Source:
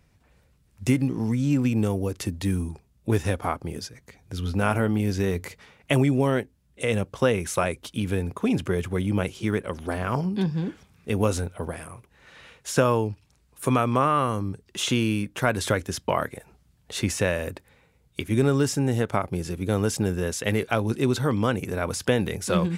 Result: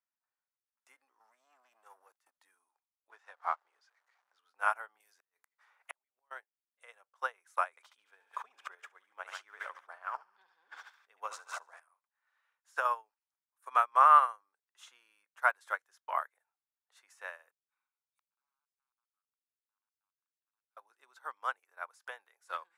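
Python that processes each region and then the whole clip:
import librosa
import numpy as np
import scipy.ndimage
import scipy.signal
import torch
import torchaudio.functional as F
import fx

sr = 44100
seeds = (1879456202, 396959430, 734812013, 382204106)

y = fx.chain(x, sr, fx.leveller(passes=2),
    fx.level_steps(step_db=23), at=(1.2, 2.35))
y = fx.chain(y, sr, fx.zero_step(step_db=-36.5),
    fx.bandpass_edges(low_hz=230.0, high_hz=5300.0), at=(3.1, 4.39))
y = fx.chain(y, sr, fx.high_shelf(hz=4300.0, db=8.5),
    fx.gate_flip(shuts_db=-13.0, range_db=-36),
    fx.band_squash(depth_pct=100), at=(5.0, 6.31))
y = fx.chain(y, sr, fx.peak_eq(hz=11000.0, db=-12.5, octaves=0.53),
    fx.echo_thinned(ms=71, feedback_pct=78, hz=1000.0, wet_db=-10.0),
    fx.sustainer(db_per_s=20.0), at=(7.7, 11.8))
y = fx.chain(y, sr, fx.overflow_wrap(gain_db=15.5),
    fx.comb(ms=0.8, depth=0.65),
    fx.gate_flip(shuts_db=-29.0, range_db=-41), at=(17.51, 20.77))
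y = scipy.signal.sosfilt(scipy.signal.butter(4, 840.0, 'highpass', fs=sr, output='sos'), y)
y = fx.high_shelf_res(y, sr, hz=2000.0, db=-7.5, q=1.5)
y = fx.upward_expand(y, sr, threshold_db=-40.0, expansion=2.5)
y = y * librosa.db_to_amplitude(3.0)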